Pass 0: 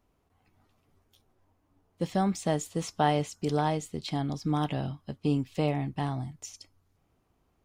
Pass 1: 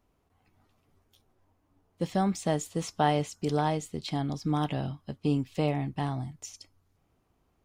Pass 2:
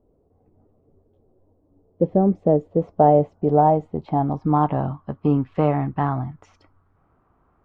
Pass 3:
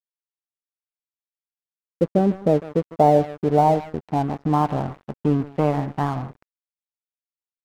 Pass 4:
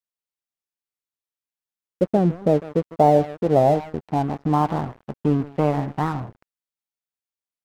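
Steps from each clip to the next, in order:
nothing audible
low-pass sweep 490 Hz -> 1300 Hz, 2.4–5.45; gain +7.5 dB
outdoor echo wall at 26 m, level -15 dB; crossover distortion -34 dBFS
record warp 45 rpm, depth 250 cents

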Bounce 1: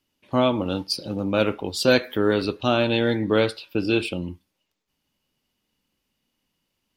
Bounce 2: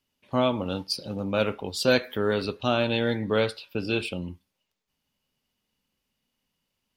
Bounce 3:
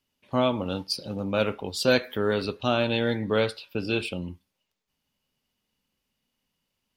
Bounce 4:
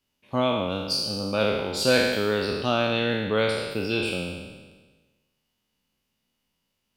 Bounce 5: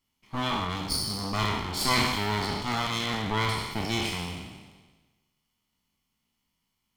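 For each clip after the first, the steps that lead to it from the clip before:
bell 320 Hz -9 dB 0.23 oct; gain -3 dB
nothing audible
spectral trails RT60 1.33 s; gain -1 dB
minimum comb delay 0.94 ms

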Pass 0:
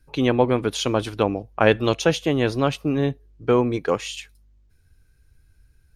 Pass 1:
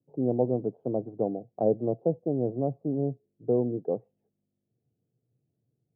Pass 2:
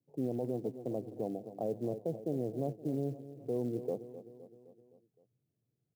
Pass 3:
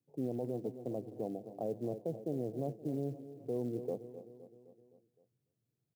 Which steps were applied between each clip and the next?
Chebyshev band-pass 120–720 Hz, order 4; gain -6 dB
feedback echo 0.258 s, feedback 56%, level -15.5 dB; short-mantissa float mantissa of 4-bit; limiter -19.5 dBFS, peak gain reduction 8.5 dB; gain -5.5 dB
echo 0.291 s -20 dB; gain -2 dB

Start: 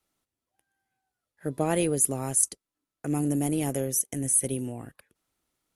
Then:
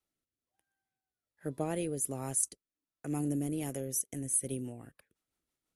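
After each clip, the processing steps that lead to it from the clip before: rotary speaker horn 1.2 Hz, later 6 Hz, at 3.33; gain -6 dB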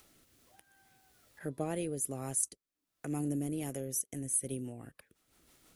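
notch 920 Hz, Q 28; in parallel at +2 dB: upward compressor, threshold -34 dBFS; on the sum: gain -8.5 dB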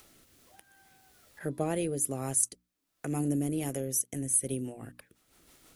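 notches 60/120/180/240/300 Hz; gain +5 dB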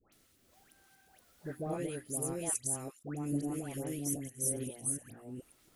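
reverse delay 0.415 s, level -0.5 dB; dispersion highs, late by 0.126 s, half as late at 1300 Hz; gain -7.5 dB

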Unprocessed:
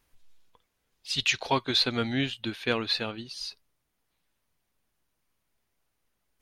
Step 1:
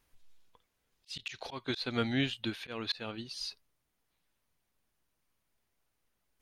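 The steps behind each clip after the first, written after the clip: auto swell 0.23 s; gain -2.5 dB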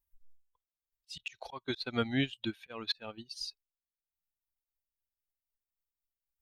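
per-bin expansion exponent 1.5; transient shaper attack +1 dB, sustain -8 dB; gain +1 dB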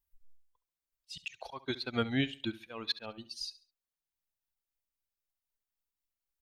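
feedback echo 69 ms, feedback 31%, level -17 dB

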